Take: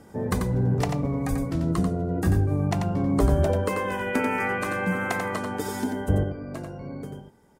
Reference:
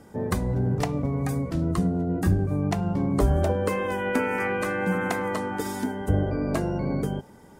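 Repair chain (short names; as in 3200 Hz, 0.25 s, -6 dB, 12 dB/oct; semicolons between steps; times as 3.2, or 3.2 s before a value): 1.29–1.41 HPF 140 Hz 24 dB/oct; inverse comb 90 ms -6 dB; gain 0 dB, from 6.23 s +10 dB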